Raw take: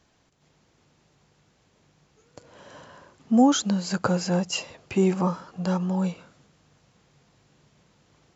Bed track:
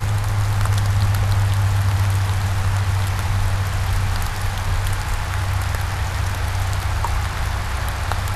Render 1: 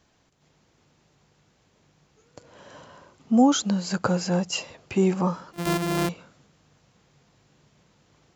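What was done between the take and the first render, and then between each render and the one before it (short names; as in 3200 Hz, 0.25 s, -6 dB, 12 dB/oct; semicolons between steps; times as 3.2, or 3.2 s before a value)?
2.77–3.63 notch 1700 Hz, Q 10; 5.53–6.09 sample sorter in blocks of 128 samples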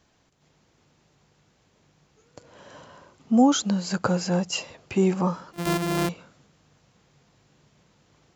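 nothing audible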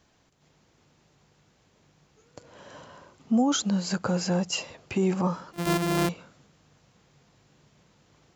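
limiter -16.5 dBFS, peak gain reduction 8 dB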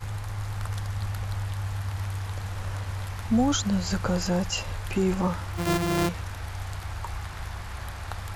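add bed track -13 dB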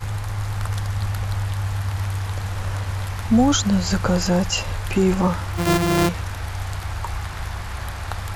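gain +6.5 dB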